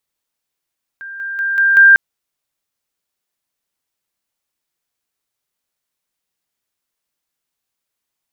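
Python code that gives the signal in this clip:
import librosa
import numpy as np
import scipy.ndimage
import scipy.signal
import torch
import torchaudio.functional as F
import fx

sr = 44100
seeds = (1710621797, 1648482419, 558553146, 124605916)

y = fx.level_ladder(sr, hz=1590.0, from_db=-27.5, step_db=6.0, steps=5, dwell_s=0.19, gap_s=0.0)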